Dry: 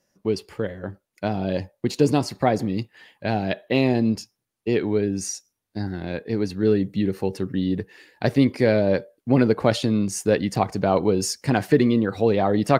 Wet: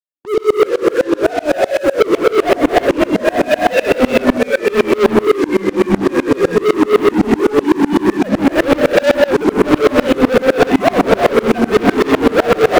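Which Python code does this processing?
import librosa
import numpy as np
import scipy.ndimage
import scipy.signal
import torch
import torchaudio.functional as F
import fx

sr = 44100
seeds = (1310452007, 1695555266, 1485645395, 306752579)

y = fx.sine_speech(x, sr)
y = fx.leveller(y, sr, passes=3)
y = fx.echo_pitch(y, sr, ms=240, semitones=-2, count=3, db_per_echo=-6.0)
y = fx.rev_gated(y, sr, seeds[0], gate_ms=380, shape='rising', drr_db=-6.0)
y = fx.leveller(y, sr, passes=5)
y = fx.tremolo_decay(y, sr, direction='swelling', hz=7.9, depth_db=27)
y = y * 10.0 ** (-10.0 / 20.0)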